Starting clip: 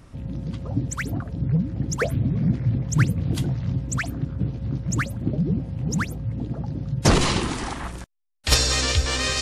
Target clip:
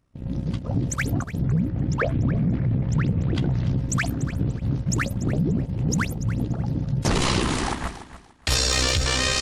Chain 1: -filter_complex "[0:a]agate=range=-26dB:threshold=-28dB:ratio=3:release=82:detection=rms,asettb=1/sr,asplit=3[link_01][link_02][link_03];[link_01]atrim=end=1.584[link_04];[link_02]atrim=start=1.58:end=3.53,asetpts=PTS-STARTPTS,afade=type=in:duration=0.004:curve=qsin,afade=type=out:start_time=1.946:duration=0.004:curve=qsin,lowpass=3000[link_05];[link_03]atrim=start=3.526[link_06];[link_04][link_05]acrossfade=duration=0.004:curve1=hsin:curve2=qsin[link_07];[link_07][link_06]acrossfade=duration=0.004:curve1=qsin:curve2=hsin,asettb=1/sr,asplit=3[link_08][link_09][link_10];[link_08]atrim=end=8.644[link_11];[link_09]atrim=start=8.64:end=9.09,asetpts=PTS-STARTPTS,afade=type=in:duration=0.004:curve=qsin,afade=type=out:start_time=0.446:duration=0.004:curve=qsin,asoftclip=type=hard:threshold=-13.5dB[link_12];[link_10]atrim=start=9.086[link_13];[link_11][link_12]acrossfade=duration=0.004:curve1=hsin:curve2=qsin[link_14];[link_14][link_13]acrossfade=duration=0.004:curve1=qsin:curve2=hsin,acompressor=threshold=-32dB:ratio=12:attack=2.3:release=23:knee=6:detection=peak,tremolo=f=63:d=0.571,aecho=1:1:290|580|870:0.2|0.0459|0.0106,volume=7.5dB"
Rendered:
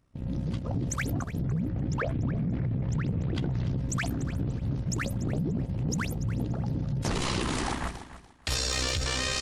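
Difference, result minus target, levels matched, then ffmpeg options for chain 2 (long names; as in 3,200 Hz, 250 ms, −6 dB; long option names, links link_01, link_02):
downward compressor: peak gain reduction +8 dB
-filter_complex "[0:a]agate=range=-26dB:threshold=-28dB:ratio=3:release=82:detection=rms,asettb=1/sr,asplit=3[link_01][link_02][link_03];[link_01]atrim=end=1.584[link_04];[link_02]atrim=start=1.58:end=3.53,asetpts=PTS-STARTPTS,afade=type=in:duration=0.004:curve=qsin,afade=type=out:start_time=1.946:duration=0.004:curve=qsin,lowpass=3000[link_05];[link_03]atrim=start=3.526[link_06];[link_04][link_05]acrossfade=duration=0.004:curve1=hsin:curve2=qsin[link_07];[link_07][link_06]acrossfade=duration=0.004:curve1=qsin:curve2=hsin,asettb=1/sr,asplit=3[link_08][link_09][link_10];[link_08]atrim=end=8.644[link_11];[link_09]atrim=start=8.64:end=9.09,asetpts=PTS-STARTPTS,afade=type=in:duration=0.004:curve=qsin,afade=type=out:start_time=0.446:duration=0.004:curve=qsin,asoftclip=type=hard:threshold=-13.5dB[link_12];[link_10]atrim=start=9.086[link_13];[link_11][link_12]acrossfade=duration=0.004:curve1=hsin:curve2=qsin[link_14];[link_14][link_13]acrossfade=duration=0.004:curve1=qsin:curve2=hsin,acompressor=threshold=-23.5dB:ratio=12:attack=2.3:release=23:knee=6:detection=peak,tremolo=f=63:d=0.571,aecho=1:1:290|580|870:0.2|0.0459|0.0106,volume=7.5dB"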